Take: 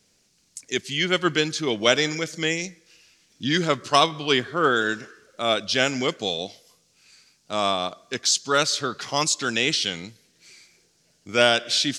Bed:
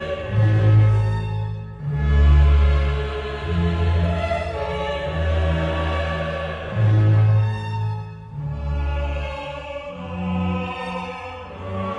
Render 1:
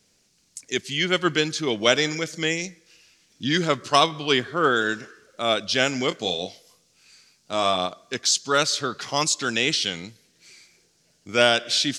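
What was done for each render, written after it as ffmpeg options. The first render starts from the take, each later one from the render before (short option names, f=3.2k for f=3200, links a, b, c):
-filter_complex "[0:a]asettb=1/sr,asplit=3[a][b][c];[a]atrim=end=6.094[d];[b]atrim=start=6.09:end=7.86,asetpts=PTS-STARTPTS,afade=t=in:d=0.004:c=qsin,afade=t=out:st=1.766:d=0.004:c=qsin,asplit=2[e][f];[f]adelay=22,volume=-8dB[g];[e][g]amix=inputs=2:normalize=0,atrim=end_sample=78057[h];[c]atrim=start=7.856[i];[d][h]acrossfade=d=0.004:c1=hsin:c2=qsin[j];[j][i]acrossfade=d=0.004:c1=qsin:c2=hsin"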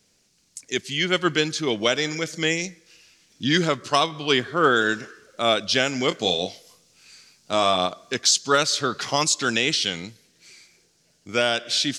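-af "dynaudnorm=f=370:g=11:m=11.5dB,alimiter=limit=-7dB:level=0:latency=1:release=406"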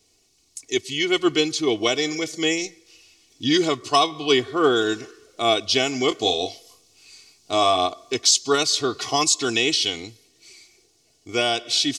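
-af "equalizer=f=1.6k:t=o:w=0.34:g=-14.5,aecho=1:1:2.7:0.77"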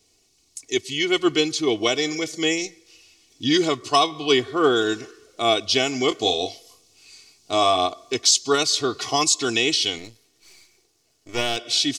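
-filter_complex "[0:a]asettb=1/sr,asplit=3[a][b][c];[a]atrim=end=9.984[d];[b]atrim=start=9.98:end=11.57,asetpts=PTS-STARTPTS,afade=t=in:d=0.004:c=qsin,afade=t=out:st=1.586:d=0.004:c=qsin,aeval=exprs='if(lt(val(0),0),0.251*val(0),val(0))':c=same[e];[c]atrim=start=11.566[f];[d][e]acrossfade=d=0.004:c1=hsin:c2=qsin[g];[g][f]acrossfade=d=0.004:c1=qsin:c2=hsin"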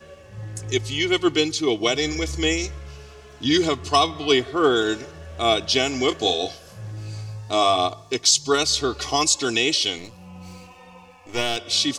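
-filter_complex "[1:a]volume=-18dB[a];[0:a][a]amix=inputs=2:normalize=0"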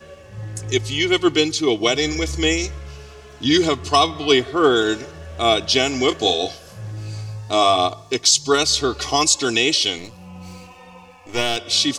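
-af "volume=3dB,alimiter=limit=-3dB:level=0:latency=1"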